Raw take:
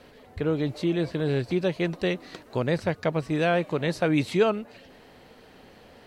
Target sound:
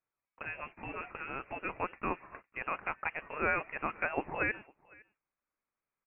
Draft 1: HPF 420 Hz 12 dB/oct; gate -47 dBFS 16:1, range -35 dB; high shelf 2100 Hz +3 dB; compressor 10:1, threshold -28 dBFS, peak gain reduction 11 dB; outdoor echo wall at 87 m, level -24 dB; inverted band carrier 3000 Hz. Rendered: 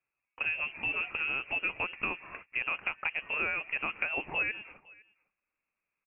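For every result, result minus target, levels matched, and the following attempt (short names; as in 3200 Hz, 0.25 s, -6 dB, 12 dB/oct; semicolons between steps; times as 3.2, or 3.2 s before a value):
compressor: peak gain reduction +11 dB; 500 Hz band -9.5 dB
HPF 420 Hz 12 dB/oct; gate -47 dBFS 16:1, range -35 dB; high shelf 2100 Hz +3 dB; outdoor echo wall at 87 m, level -24 dB; inverted band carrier 3000 Hz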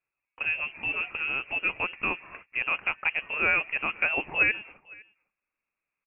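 500 Hz band -9.5 dB
HPF 1300 Hz 12 dB/oct; gate -47 dBFS 16:1, range -35 dB; high shelf 2100 Hz +3 dB; outdoor echo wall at 87 m, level -24 dB; inverted band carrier 3000 Hz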